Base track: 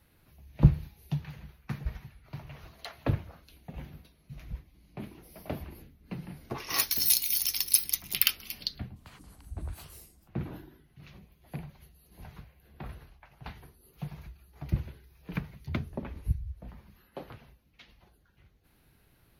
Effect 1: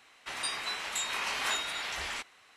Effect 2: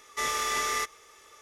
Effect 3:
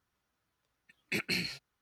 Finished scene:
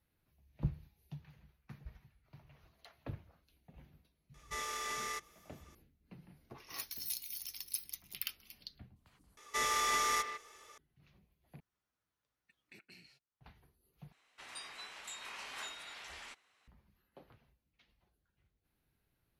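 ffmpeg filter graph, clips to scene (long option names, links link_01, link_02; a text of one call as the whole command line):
ffmpeg -i bed.wav -i cue0.wav -i cue1.wav -i cue2.wav -filter_complex "[2:a]asplit=2[link_01][link_02];[0:a]volume=-16dB[link_03];[link_02]asplit=2[link_04][link_05];[link_05]adelay=150,highpass=300,lowpass=3400,asoftclip=type=hard:threshold=-26dB,volume=-8dB[link_06];[link_04][link_06]amix=inputs=2:normalize=0[link_07];[3:a]acompressor=threshold=-45dB:ratio=4:attack=1.1:release=531:knee=1:detection=rms[link_08];[link_03]asplit=4[link_09][link_10][link_11][link_12];[link_09]atrim=end=9.374[link_13];[link_07]atrim=end=1.41,asetpts=PTS-STARTPTS,volume=-4dB[link_14];[link_10]atrim=start=10.776:end=11.604[link_15];[link_08]atrim=end=1.81,asetpts=PTS-STARTPTS,volume=-9dB[link_16];[link_11]atrim=start=13.406:end=14.124[link_17];[1:a]atrim=end=2.56,asetpts=PTS-STARTPTS,volume=-13.5dB[link_18];[link_12]atrim=start=16.676[link_19];[link_01]atrim=end=1.41,asetpts=PTS-STARTPTS,volume=-11dB,afade=type=in:duration=0.004:curve=hsin,afade=type=out:start_time=1.406:duration=0.004:curve=hsin,adelay=4340[link_20];[link_13][link_14]acrossfade=duration=0.004:curve1=hsin:curve2=hsin[link_21];[link_21][link_15]acrossfade=duration=0.004:curve1=hsin:curve2=hsin[link_22];[link_22][link_16]acrossfade=duration=0.004:curve1=hsin:curve2=hsin[link_23];[link_23][link_17]acrossfade=duration=0.004:curve1=hsin:curve2=hsin[link_24];[link_24][link_18]acrossfade=duration=0.004:curve1=hsin:curve2=hsin[link_25];[link_25][link_19]acrossfade=duration=0.004:curve1=hsin:curve2=hsin[link_26];[link_26][link_20]amix=inputs=2:normalize=0" out.wav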